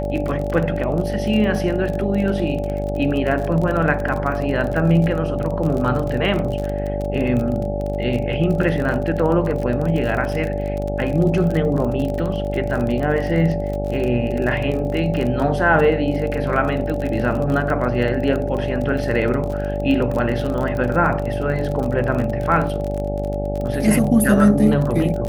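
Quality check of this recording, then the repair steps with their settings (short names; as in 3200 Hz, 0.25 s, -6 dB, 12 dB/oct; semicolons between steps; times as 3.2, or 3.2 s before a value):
buzz 50 Hz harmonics 17 -25 dBFS
crackle 32/s -24 dBFS
tone 580 Hz -25 dBFS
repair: de-click; notch 580 Hz, Q 30; de-hum 50 Hz, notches 17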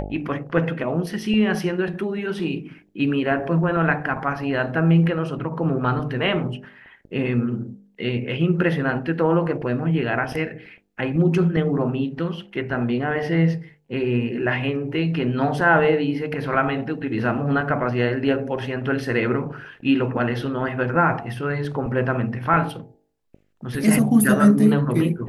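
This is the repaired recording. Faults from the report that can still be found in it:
none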